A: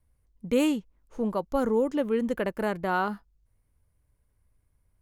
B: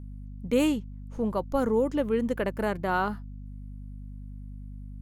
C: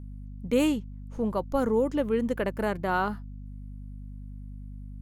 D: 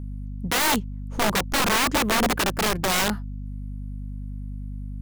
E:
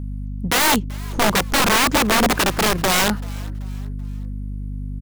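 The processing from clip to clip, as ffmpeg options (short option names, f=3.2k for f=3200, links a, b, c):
-af "aeval=exprs='val(0)+0.0112*(sin(2*PI*50*n/s)+sin(2*PI*2*50*n/s)/2+sin(2*PI*3*50*n/s)/3+sin(2*PI*4*50*n/s)/4+sin(2*PI*5*50*n/s)/5)':c=same"
-af anull
-af "aeval=exprs='(mod(15*val(0)+1,2)-1)/15':c=same,volume=7.5dB"
-filter_complex "[0:a]asplit=4[a][b][c][d];[b]adelay=384,afreqshift=99,volume=-23dB[e];[c]adelay=768,afreqshift=198,volume=-30.7dB[f];[d]adelay=1152,afreqshift=297,volume=-38.5dB[g];[a][e][f][g]amix=inputs=4:normalize=0,volume=5dB"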